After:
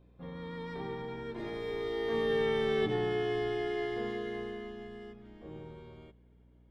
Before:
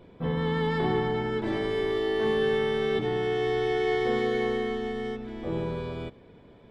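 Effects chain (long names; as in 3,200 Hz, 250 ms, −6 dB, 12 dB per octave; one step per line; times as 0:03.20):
source passing by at 0:02.76, 19 m/s, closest 12 metres
mains hum 60 Hz, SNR 26 dB
level −3 dB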